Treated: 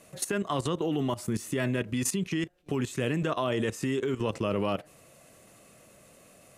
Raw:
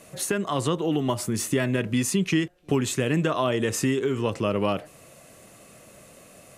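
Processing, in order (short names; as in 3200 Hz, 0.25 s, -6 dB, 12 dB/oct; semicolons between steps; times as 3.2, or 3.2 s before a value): level quantiser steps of 14 dB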